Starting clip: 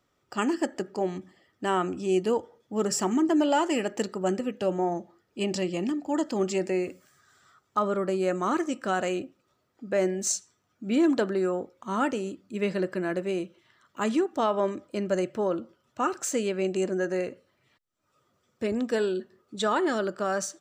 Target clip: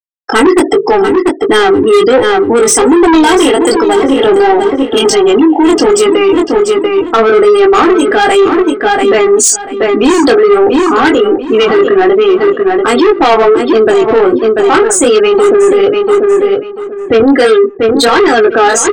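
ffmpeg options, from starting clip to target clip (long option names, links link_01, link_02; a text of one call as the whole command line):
ffmpeg -i in.wav -filter_complex "[0:a]afftfilt=real='re*gte(hypot(re,im),0.0158)':imag='im*gte(hypot(re,im),0.0158)':win_size=1024:overlap=0.75,aecho=1:1:2.7:0.88,adynamicequalizer=threshold=0.00501:dfrequency=2100:dqfactor=2.1:tfrequency=2100:tqfactor=2.1:attack=5:release=100:ratio=0.375:range=2:mode=cutabove:tftype=bell,acrossover=split=230|1600|4800[link_01][link_02][link_03][link_04];[link_02]asoftclip=type=tanh:threshold=-24.5dB[link_05];[link_01][link_05][link_03][link_04]amix=inputs=4:normalize=0,flanger=delay=19.5:depth=4.7:speed=1.2,aeval=exprs='0.158*sin(PI/2*2.51*val(0)/0.158)':channel_layout=same,asplit=2[link_06][link_07];[link_07]adelay=750,lowpass=frequency=3500:poles=1,volume=-11dB,asplit=2[link_08][link_09];[link_09]adelay=750,lowpass=frequency=3500:poles=1,volume=0.25,asplit=2[link_10][link_11];[link_11]adelay=750,lowpass=frequency=3500:poles=1,volume=0.25[link_12];[link_06][link_08][link_10][link_12]amix=inputs=4:normalize=0,asetrate=48000,aresample=44100,alimiter=level_in=24dB:limit=-1dB:release=50:level=0:latency=1,volume=-1dB" out.wav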